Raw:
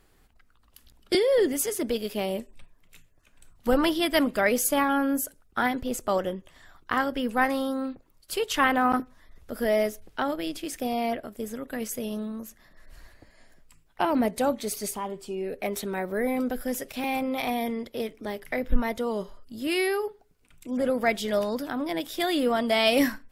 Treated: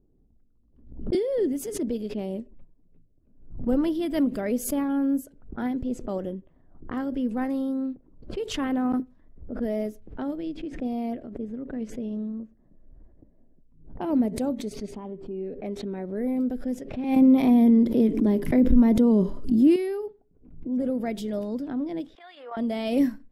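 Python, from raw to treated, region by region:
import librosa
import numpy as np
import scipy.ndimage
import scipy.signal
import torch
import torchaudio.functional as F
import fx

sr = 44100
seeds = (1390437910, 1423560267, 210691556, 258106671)

y = fx.chain(x, sr, fx.small_body(hz=(210.0, 300.0, 1000.0), ring_ms=25, db=7),
    fx.env_flatten(amount_pct=50), at=(17.16, 19.76))
y = fx.chain(y, sr, fx.highpass(hz=880.0, slope=24),
    fx.level_steps(step_db=11), at=(22.15, 22.57))
y = fx.env_lowpass(y, sr, base_hz=520.0, full_db=-23.5)
y = fx.curve_eq(y, sr, hz=(100.0, 260.0, 1200.0), db=(0, 5, -13))
y = fx.pre_swell(y, sr, db_per_s=92.0)
y = F.gain(torch.from_numpy(y), -2.0).numpy()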